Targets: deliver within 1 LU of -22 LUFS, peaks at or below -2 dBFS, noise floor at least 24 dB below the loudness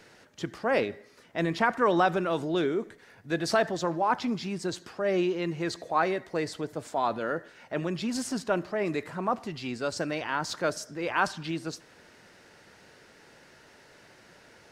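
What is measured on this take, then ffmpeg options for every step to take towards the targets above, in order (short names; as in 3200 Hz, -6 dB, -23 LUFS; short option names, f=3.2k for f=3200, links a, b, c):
loudness -29.5 LUFS; peak -10.0 dBFS; loudness target -22.0 LUFS
-> -af "volume=7.5dB"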